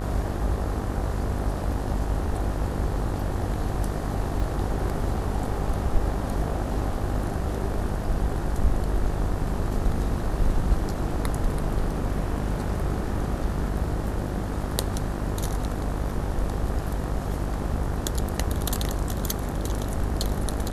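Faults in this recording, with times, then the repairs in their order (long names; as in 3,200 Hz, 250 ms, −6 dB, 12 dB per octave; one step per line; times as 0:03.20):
mains buzz 50 Hz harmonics 38 −30 dBFS
0:04.40: drop-out 2.9 ms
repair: hum removal 50 Hz, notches 38
repair the gap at 0:04.40, 2.9 ms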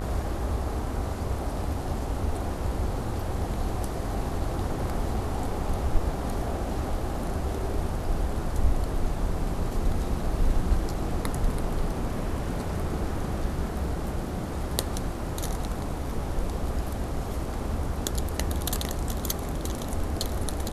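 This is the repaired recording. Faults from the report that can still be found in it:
none of them is left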